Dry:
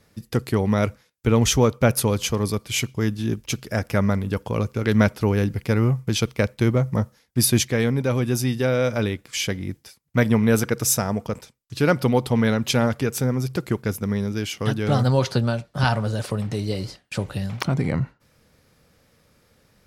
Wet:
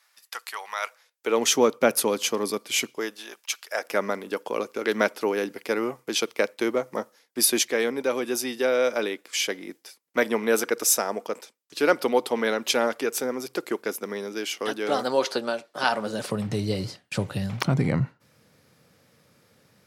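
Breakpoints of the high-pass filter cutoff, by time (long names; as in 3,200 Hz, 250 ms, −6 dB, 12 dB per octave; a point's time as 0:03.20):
high-pass filter 24 dB per octave
0:00.79 900 Hz
0:01.51 260 Hz
0:02.84 260 Hz
0:03.58 990 Hz
0:03.92 310 Hz
0:15.86 310 Hz
0:16.55 100 Hz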